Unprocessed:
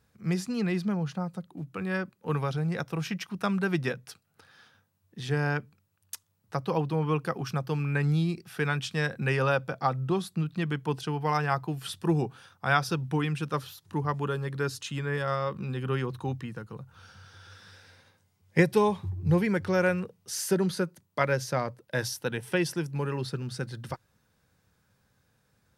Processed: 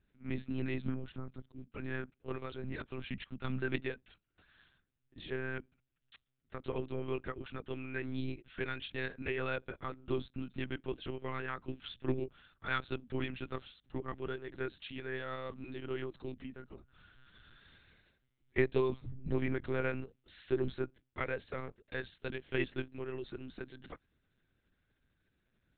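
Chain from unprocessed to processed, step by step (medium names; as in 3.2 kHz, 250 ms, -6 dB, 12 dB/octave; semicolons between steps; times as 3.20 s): bass shelf 81 Hz +11 dB; static phaser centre 310 Hz, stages 4; monotone LPC vocoder at 8 kHz 130 Hz; trim -5.5 dB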